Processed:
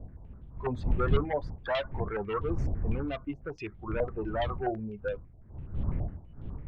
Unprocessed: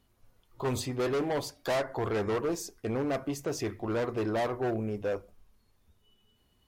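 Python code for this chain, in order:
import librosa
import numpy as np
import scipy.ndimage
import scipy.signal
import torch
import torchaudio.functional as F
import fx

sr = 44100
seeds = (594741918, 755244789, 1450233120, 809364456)

y = fx.bin_expand(x, sr, power=2.0)
y = fx.dmg_wind(y, sr, seeds[0], corner_hz=88.0, level_db=-34.0)
y = fx.filter_held_lowpass(y, sr, hz=12.0, low_hz=710.0, high_hz=3400.0)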